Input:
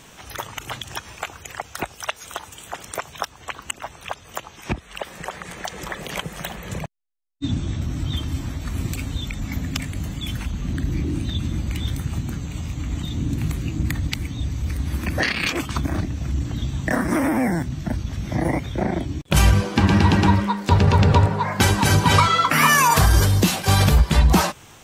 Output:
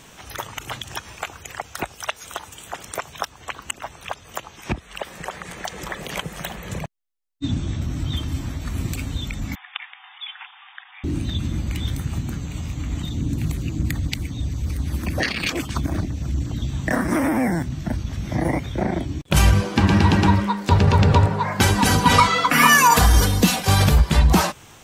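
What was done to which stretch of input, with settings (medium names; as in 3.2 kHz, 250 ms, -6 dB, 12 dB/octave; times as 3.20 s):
9.55–11.04 s: brick-wall FIR band-pass 720–3700 Hz
13.09–16.70 s: LFO notch saw down 8.3 Hz 710–3300 Hz
21.75–23.67 s: comb 4.1 ms, depth 63%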